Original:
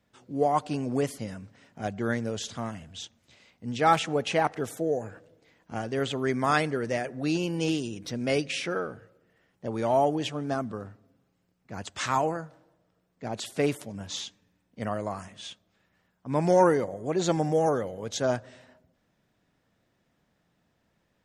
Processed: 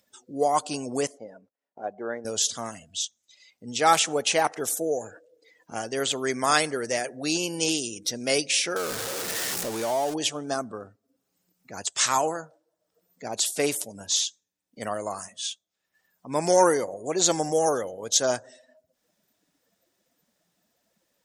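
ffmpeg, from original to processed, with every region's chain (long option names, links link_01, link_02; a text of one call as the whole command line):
ffmpeg -i in.wav -filter_complex "[0:a]asettb=1/sr,asplit=3[link_01][link_02][link_03];[link_01]atrim=end=1.074[link_04];[link_02]atrim=start=1.07:end=2.25,asetpts=PTS-STARTPTS,afade=type=in:duration=0.004:curve=qsin,afade=type=out:start_time=1.176:duration=0.004:curve=qsin,agate=range=-19dB:threshold=-50dB:ratio=16:release=100:detection=peak,bandpass=frequency=620:width_type=q:width=0.92[link_05];[link_03]atrim=start=2.246[link_06];[link_04][link_05]acrossfade=duration=0.004:curve1=hsin:curve2=qsin[link_07];[link_07][link_06]acrossfade=duration=0.004:curve1=qsin:curve2=hsin,asettb=1/sr,asplit=3[link_08][link_09][link_10];[link_08]atrim=end=8.764[link_11];[link_09]atrim=start=8.76:end=10.14,asetpts=PTS-STARTPTS,afade=type=in:duration=0.004:curve=qsin,afade=type=out:start_time=1.376:duration=0.004:curve=qsin,aeval=exprs='val(0)+0.5*0.0355*sgn(val(0))':channel_layout=same,highshelf=frequency=6300:gain=-4,acompressor=threshold=-28dB:ratio=2:attack=3.2:release=140:knee=1:detection=peak[link_12];[link_10]atrim=start=10.136[link_13];[link_11][link_12]acrossfade=duration=0.004:curve1=hsin:curve2=qsin[link_14];[link_14][link_13]acrossfade=duration=0.004:curve1=qsin:curve2=hsin,bass=frequency=250:gain=-11,treble=frequency=4000:gain=15,acompressor=mode=upward:threshold=-43dB:ratio=2.5,afftdn=noise_reduction=20:noise_floor=-48,volume=2dB" out.wav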